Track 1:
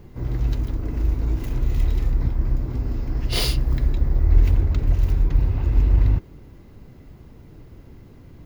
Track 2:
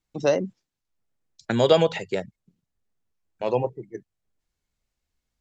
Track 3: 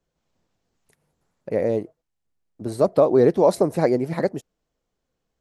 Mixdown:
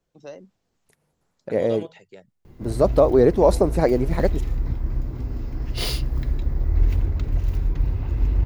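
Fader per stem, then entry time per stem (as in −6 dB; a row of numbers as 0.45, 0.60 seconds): −3.5, −18.0, +0.5 decibels; 2.45, 0.00, 0.00 seconds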